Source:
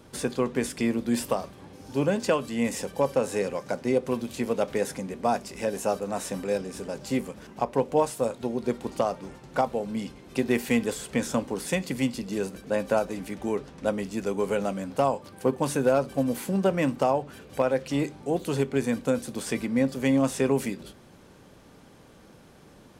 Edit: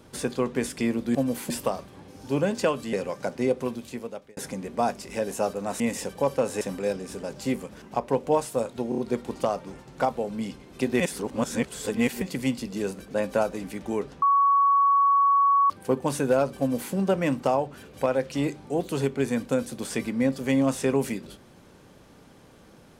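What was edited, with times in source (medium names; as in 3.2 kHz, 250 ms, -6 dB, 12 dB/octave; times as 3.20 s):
2.58–3.39 s: move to 6.26 s
3.98–4.83 s: fade out
8.54 s: stutter 0.03 s, 4 plays
10.56–11.78 s: reverse
13.78–15.26 s: bleep 1.12 kHz -16.5 dBFS
16.15–16.50 s: copy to 1.15 s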